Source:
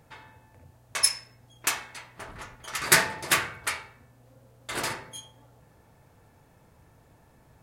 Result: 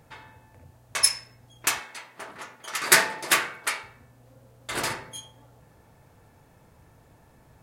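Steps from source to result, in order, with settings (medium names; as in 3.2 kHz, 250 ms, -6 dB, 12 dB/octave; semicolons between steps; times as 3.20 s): 1.80–3.83 s: high-pass 230 Hz 12 dB/octave; trim +2 dB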